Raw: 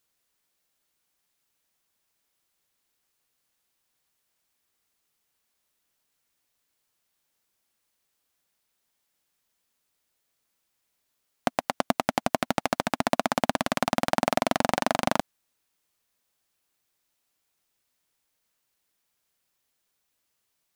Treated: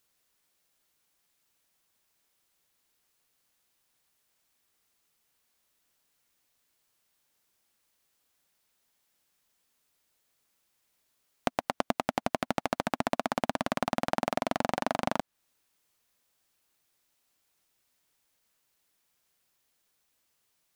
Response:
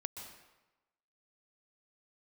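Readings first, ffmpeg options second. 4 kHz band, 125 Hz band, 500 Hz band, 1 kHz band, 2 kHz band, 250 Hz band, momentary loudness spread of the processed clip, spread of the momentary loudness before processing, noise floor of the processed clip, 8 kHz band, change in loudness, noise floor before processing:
-6.5 dB, -4.5 dB, -4.5 dB, -4.5 dB, -5.5 dB, -4.5 dB, 3 LU, 5 LU, -79 dBFS, -8.0 dB, -4.5 dB, -77 dBFS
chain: -filter_complex "[0:a]acrossover=split=1600|4800[a][b][c];[a]acompressor=threshold=-27dB:ratio=4[d];[b]acompressor=threshold=-41dB:ratio=4[e];[c]acompressor=threshold=-49dB:ratio=4[f];[d][e][f]amix=inputs=3:normalize=0,volume=2dB"

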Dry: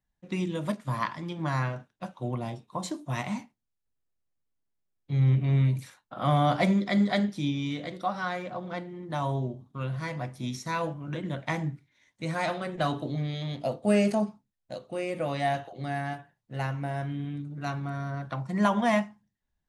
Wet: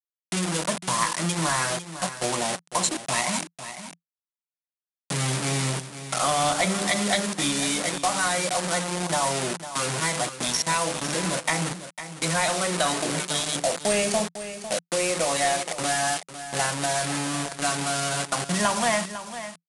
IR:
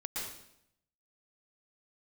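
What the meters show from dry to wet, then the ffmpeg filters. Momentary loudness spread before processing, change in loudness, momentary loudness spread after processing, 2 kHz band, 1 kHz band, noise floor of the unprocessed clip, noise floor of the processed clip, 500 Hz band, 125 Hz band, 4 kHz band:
12 LU, +5.0 dB, 8 LU, +8.5 dB, +5.5 dB, -82 dBFS, under -85 dBFS, +4.5 dB, -4.0 dB, +14.0 dB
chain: -filter_complex "[0:a]asplit=2[a][b];[b]aeval=exprs='(mod(25.1*val(0)+1,2)-1)/25.1':c=same,volume=-10dB[c];[a][c]amix=inputs=2:normalize=0,bandreject=f=50:t=h:w=6,bandreject=f=100:t=h:w=6,bandreject=f=150:t=h:w=6,bandreject=f=200:t=h:w=6,bandreject=f=250:t=h:w=6,bandreject=f=300:t=h:w=6,bandreject=f=350:t=h:w=6,bandreject=f=400:t=h:w=6,bandreject=f=450:t=h:w=6,bandreject=f=500:t=h:w=6,afftdn=nr=15:nf=-39,acrossover=split=250[d][e];[e]dynaudnorm=f=180:g=7:m=9.5dB[f];[d][f]amix=inputs=2:normalize=0,acrusher=bits=4:mix=0:aa=0.000001,aemphasis=mode=production:type=riaa,asoftclip=type=tanh:threshold=-10.5dB,aresample=22050,aresample=44100,equalizer=f=170:w=4.4:g=13,acompressor=threshold=-27dB:ratio=2.5,aecho=1:1:502:0.251,volume=4.5dB"

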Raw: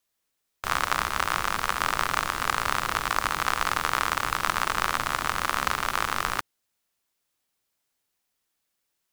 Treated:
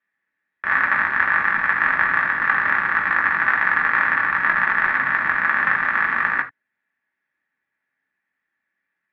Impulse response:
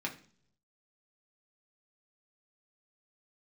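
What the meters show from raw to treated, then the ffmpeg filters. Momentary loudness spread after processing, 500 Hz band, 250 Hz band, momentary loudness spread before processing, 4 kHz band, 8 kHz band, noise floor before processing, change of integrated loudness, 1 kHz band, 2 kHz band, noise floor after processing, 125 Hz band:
2 LU, -1.5 dB, +2.5 dB, 2 LU, under -10 dB, under -30 dB, -79 dBFS, +8.5 dB, +3.5 dB, +13.0 dB, -80 dBFS, -2.5 dB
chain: -filter_complex "[0:a]lowpass=f=1.8k:t=q:w=9.1[a];[1:a]atrim=start_sample=2205,atrim=end_sample=4410[b];[a][b]afir=irnorm=-1:irlink=0,volume=-3.5dB"

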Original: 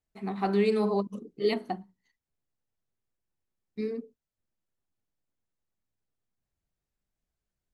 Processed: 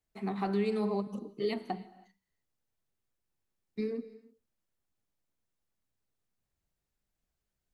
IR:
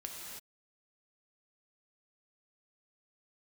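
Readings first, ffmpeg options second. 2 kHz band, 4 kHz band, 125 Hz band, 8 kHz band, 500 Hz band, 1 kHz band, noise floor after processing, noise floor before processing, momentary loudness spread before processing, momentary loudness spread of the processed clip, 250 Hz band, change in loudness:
-5.5 dB, -5.5 dB, -3.0 dB, n/a, -5.5 dB, -4.5 dB, under -85 dBFS, under -85 dBFS, 14 LU, 13 LU, -3.0 dB, -4.5 dB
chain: -filter_complex "[0:a]acrossover=split=160[a][b];[b]acompressor=threshold=-34dB:ratio=2.5[c];[a][c]amix=inputs=2:normalize=0,asplit=2[d][e];[1:a]atrim=start_sample=2205,lowshelf=f=230:g=-10.5[f];[e][f]afir=irnorm=-1:irlink=0,volume=-10.5dB[g];[d][g]amix=inputs=2:normalize=0"

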